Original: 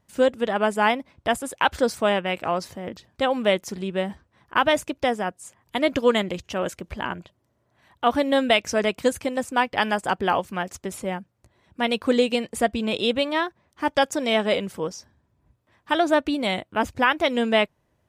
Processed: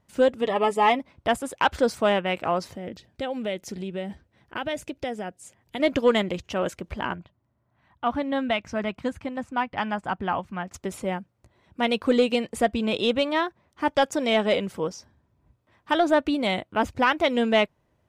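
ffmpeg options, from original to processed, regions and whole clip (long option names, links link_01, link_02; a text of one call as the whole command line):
ffmpeg -i in.wav -filter_complex "[0:a]asettb=1/sr,asplit=3[link_01][link_02][link_03];[link_01]atrim=end=0.414[link_04];[link_02]atrim=start=0.41:end=0.99,asetpts=PTS-STARTPTS,afade=type=in:duration=0.004:curve=qsin,afade=type=out:start_time=0.576:duration=0.004:curve=qsin,asuperstop=centerf=1500:order=20:qfactor=5.9,aecho=1:1:7:0.51,atrim=end_sample=25578[link_05];[link_03]atrim=start=0.986[link_06];[link_04][link_05]acrossfade=duration=0.004:curve1=hsin:curve2=qsin[link_07];[link_07][link_06]acrossfade=duration=0.004:curve1=qsin:curve2=hsin,asettb=1/sr,asplit=3[link_08][link_09][link_10];[link_08]atrim=end=2.754[link_11];[link_09]atrim=start=2.75:end=5.8,asetpts=PTS-STARTPTS,afade=type=in:duration=0.004:curve=qsin,afade=type=out:start_time=3.046:duration=0.004:curve=qsin,equalizer=frequency=1100:width=2.3:gain=-10,acompressor=threshold=-31dB:ratio=2:attack=3.2:release=140:knee=1:detection=peak[link_12];[link_10]atrim=start=5.796[link_13];[link_11][link_12]acrossfade=duration=0.004:curve1=hsin:curve2=qsin[link_14];[link_14][link_13]acrossfade=duration=0.004:curve1=qsin:curve2=hsin,asettb=1/sr,asplit=3[link_15][link_16][link_17];[link_15]atrim=end=7.154[link_18];[link_16]atrim=start=7.15:end=10.74,asetpts=PTS-STARTPTS,afade=type=in:duration=0.004:curve=qsin,afade=type=out:start_time=3.586:duration=0.004:curve=qsin,lowpass=frequency=1300:poles=1,equalizer=frequency=450:width=1.3:gain=-10[link_19];[link_17]atrim=start=10.736[link_20];[link_18][link_19]acrossfade=duration=0.004:curve1=hsin:curve2=qsin[link_21];[link_21][link_20]acrossfade=duration=0.004:curve1=qsin:curve2=hsin,highshelf=frequency=5800:gain=-6.5,bandreject=frequency=1700:width=24,acontrast=63,volume=-6dB" out.wav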